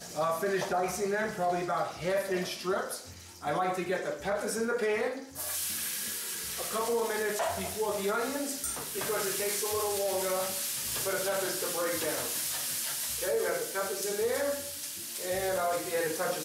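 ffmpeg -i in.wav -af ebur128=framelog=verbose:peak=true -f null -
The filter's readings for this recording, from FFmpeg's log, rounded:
Integrated loudness:
  I:         -31.2 LUFS
  Threshold: -41.2 LUFS
Loudness range:
  LRA:         2.0 LU
  Threshold: -51.2 LUFS
  LRA low:   -32.3 LUFS
  LRA high:  -30.2 LUFS
True peak:
  Peak:      -19.0 dBFS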